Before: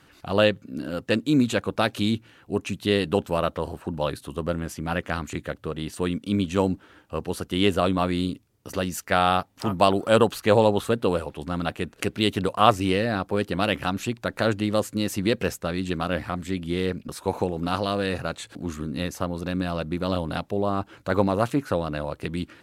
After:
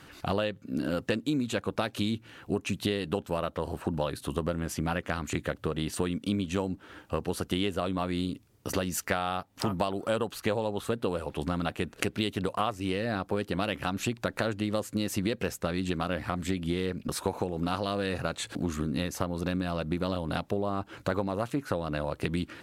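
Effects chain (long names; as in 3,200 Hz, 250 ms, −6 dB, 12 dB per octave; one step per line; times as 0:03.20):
downward compressor 12 to 1, threshold −30 dBFS, peak gain reduction 20 dB
level +4.5 dB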